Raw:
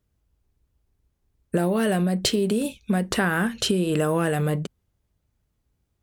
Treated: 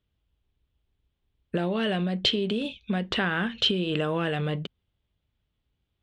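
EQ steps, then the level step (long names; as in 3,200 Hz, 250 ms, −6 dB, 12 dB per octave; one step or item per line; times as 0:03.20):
low-pass with resonance 3,300 Hz, resonance Q 3.6
−5.0 dB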